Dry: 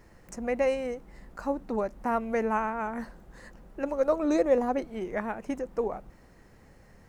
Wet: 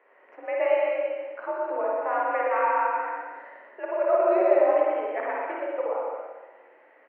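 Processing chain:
bouncing-ball delay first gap 120 ms, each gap 0.7×, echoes 5
spring reverb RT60 1.2 s, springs 48/58 ms, chirp 55 ms, DRR −2 dB
single-sideband voice off tune +56 Hz 370–2,700 Hz
level −1 dB

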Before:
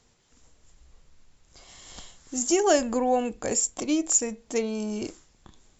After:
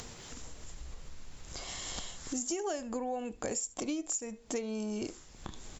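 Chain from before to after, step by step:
upward compression, threshold −32 dBFS
on a send: single-tap delay 73 ms −23.5 dB
on the sum: downward compressor 10 to 1, threshold −32 dBFS, peak gain reduction 17 dB

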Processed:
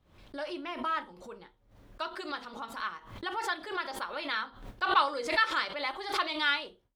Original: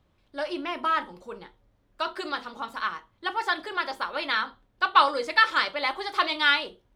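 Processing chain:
noise gate with hold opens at −53 dBFS
background raised ahead of every attack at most 91 dB per second
level −7 dB

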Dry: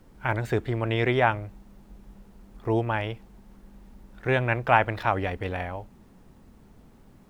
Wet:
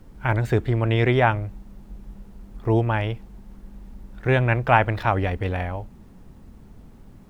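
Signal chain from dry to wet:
low-shelf EQ 190 Hz +7.5 dB
level +2 dB

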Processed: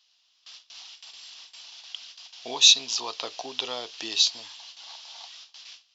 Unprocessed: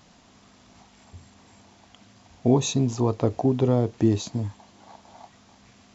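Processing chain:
noise gate with hold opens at −43 dBFS
high-pass filter 1,300 Hz 12 dB per octave
flat-topped bell 3,900 Hz +14.5 dB 1.3 octaves
level +3.5 dB

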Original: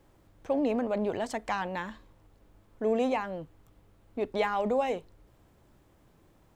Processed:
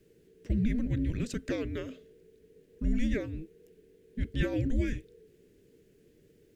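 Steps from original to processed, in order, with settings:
frequency shifter −480 Hz
flat-topped bell 970 Hz −16 dB 1.1 octaves

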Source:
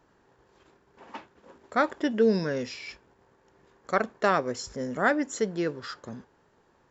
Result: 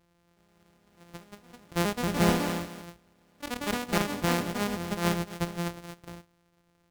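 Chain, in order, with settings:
samples sorted by size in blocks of 256 samples
delay with pitch and tempo change per echo 364 ms, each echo +3 semitones, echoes 3
level −4 dB

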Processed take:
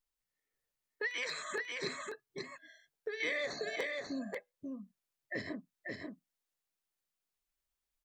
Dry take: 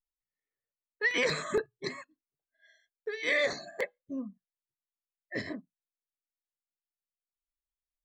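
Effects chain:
0:01.07–0:01.76: high-pass filter 1,400 Hz 6 dB per octave
downward compressor 2.5 to 1, threshold −45 dBFS, peak gain reduction 14 dB
single-tap delay 539 ms −3.5 dB
0:03.20–0:03.76: multiband upward and downward compressor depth 100%
level +4.5 dB

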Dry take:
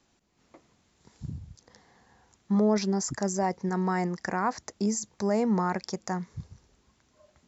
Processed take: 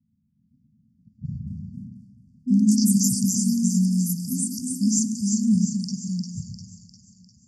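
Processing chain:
low-pass that shuts in the quiet parts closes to 570 Hz, open at −26 dBFS
high-pass filter 130 Hz 12 dB per octave
bass and treble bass +10 dB, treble +10 dB
echo with a time of its own for lows and highs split 390 Hz, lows 113 ms, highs 351 ms, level −5 dB
delay with pitch and tempo change per echo 482 ms, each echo +4 semitones, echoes 2
linear-phase brick-wall band-stop 260–4,400 Hz
dense smooth reverb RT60 3.3 s, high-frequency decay 0.8×, DRR 13.5 dB

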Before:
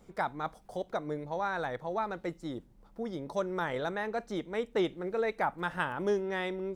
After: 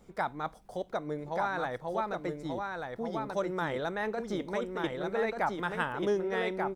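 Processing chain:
0:04.00–0:04.84: compressor whose output falls as the input rises −34 dBFS, ratio −1
single-tap delay 1,186 ms −4 dB

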